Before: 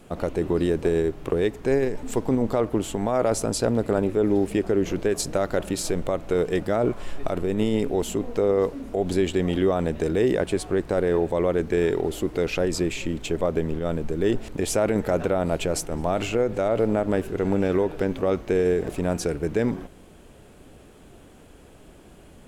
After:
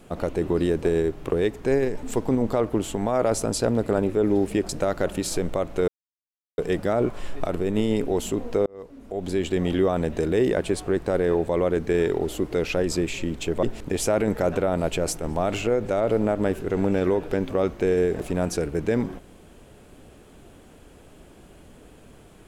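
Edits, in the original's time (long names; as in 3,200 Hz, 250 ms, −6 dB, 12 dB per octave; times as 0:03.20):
0:04.69–0:05.22: remove
0:06.41: splice in silence 0.70 s
0:08.49–0:09.46: fade in
0:13.46–0:14.31: remove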